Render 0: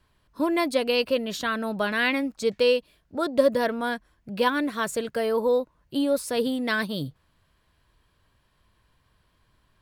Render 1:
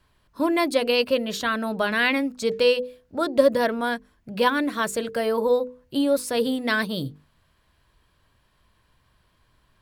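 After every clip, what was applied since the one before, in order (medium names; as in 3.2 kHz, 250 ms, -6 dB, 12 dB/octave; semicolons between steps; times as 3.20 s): hum notches 50/100/150/200/250/300/350/400/450/500 Hz; trim +2.5 dB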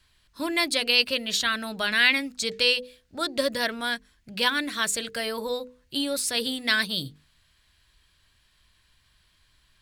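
graphic EQ 125/250/500/1000/2000/4000/8000 Hz -5/-5/-8/-6/+3/+6/+6 dB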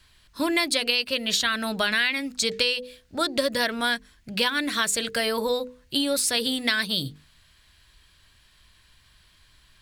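compression 6:1, threshold -26 dBFS, peak gain reduction 12 dB; trim +6 dB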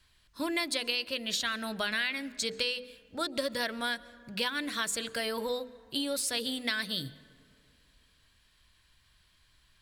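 reverberation RT60 2.5 s, pre-delay 93 ms, DRR 20 dB; trim -8 dB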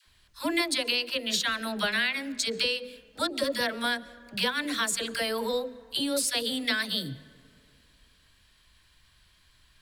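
phase dispersion lows, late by 62 ms, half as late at 570 Hz; trim +4 dB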